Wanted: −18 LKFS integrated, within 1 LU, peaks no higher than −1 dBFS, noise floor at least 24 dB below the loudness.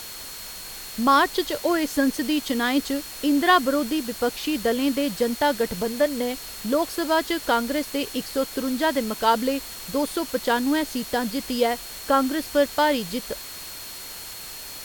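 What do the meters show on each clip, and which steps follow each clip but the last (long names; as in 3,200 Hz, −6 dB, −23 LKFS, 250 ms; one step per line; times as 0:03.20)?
interfering tone 4,300 Hz; level of the tone −42 dBFS; background noise floor −38 dBFS; target noise floor −48 dBFS; integrated loudness −23.5 LKFS; sample peak −6.0 dBFS; target loudness −18.0 LKFS
→ notch filter 4,300 Hz, Q 30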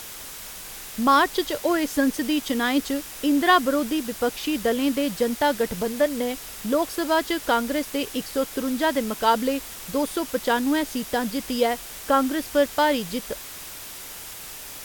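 interfering tone none found; background noise floor −39 dBFS; target noise floor −48 dBFS
→ broadband denoise 9 dB, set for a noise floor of −39 dBFS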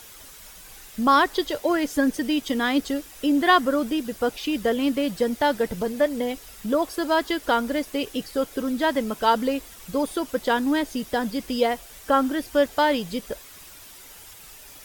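background noise floor −45 dBFS; target noise floor −48 dBFS
→ broadband denoise 6 dB, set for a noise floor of −45 dBFS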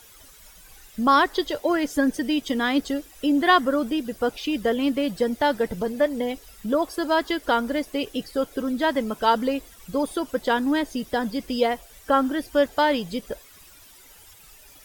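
background noise floor −50 dBFS; integrated loudness −24.0 LKFS; sample peak −6.0 dBFS; target loudness −18.0 LKFS
→ level +6 dB
brickwall limiter −1 dBFS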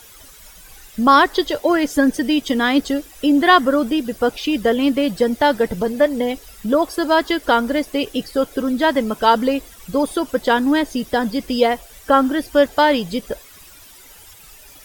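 integrated loudness −18.0 LKFS; sample peak −1.0 dBFS; background noise floor −44 dBFS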